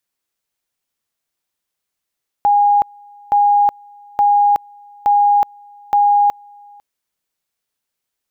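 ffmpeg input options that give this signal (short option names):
-f lavfi -i "aevalsrc='pow(10,(-9-29.5*gte(mod(t,0.87),0.37))/20)*sin(2*PI*819*t)':d=4.35:s=44100"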